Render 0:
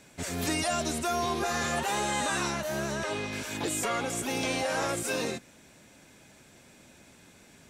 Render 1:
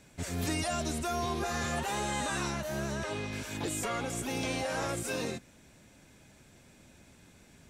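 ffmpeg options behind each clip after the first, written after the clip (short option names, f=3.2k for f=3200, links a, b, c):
-af "lowshelf=f=130:g=11,volume=-4.5dB"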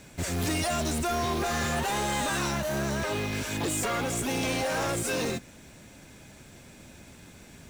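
-af "asoftclip=type=tanh:threshold=-31.5dB,acrusher=bits=4:mode=log:mix=0:aa=0.000001,volume=8dB"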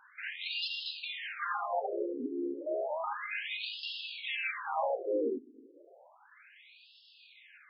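-af "afftfilt=real='re*between(b*sr/1024,330*pow(3800/330,0.5+0.5*sin(2*PI*0.32*pts/sr))/1.41,330*pow(3800/330,0.5+0.5*sin(2*PI*0.32*pts/sr))*1.41)':imag='im*between(b*sr/1024,330*pow(3800/330,0.5+0.5*sin(2*PI*0.32*pts/sr))/1.41,330*pow(3800/330,0.5+0.5*sin(2*PI*0.32*pts/sr))*1.41)':win_size=1024:overlap=0.75,volume=2dB"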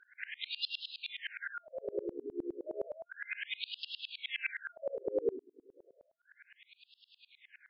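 -af "highpass=f=380:w=0.5412,highpass=f=380:w=1.3066,equalizer=f=400:t=q:w=4:g=4,equalizer=f=650:t=q:w=4:g=-10,equalizer=f=2.6k:t=q:w=4:g=-5,lowpass=f=4.3k:w=0.5412,lowpass=f=4.3k:w=1.3066,afftfilt=real='re*(1-between(b*sr/4096,680,1400))':imag='im*(1-between(b*sr/4096,680,1400))':win_size=4096:overlap=0.75,aeval=exprs='val(0)*pow(10,-29*if(lt(mod(-9.7*n/s,1),2*abs(-9.7)/1000),1-mod(-9.7*n/s,1)/(2*abs(-9.7)/1000),(mod(-9.7*n/s,1)-2*abs(-9.7)/1000)/(1-2*abs(-9.7)/1000))/20)':c=same,volume=7.5dB"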